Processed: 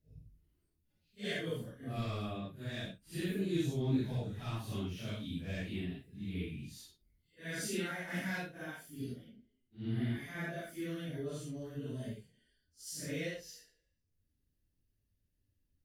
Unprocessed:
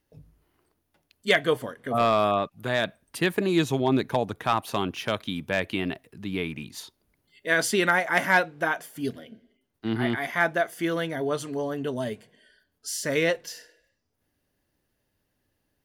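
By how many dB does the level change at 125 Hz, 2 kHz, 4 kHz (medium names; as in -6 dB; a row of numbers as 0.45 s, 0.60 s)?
-4.0 dB, -18.0 dB, -13.5 dB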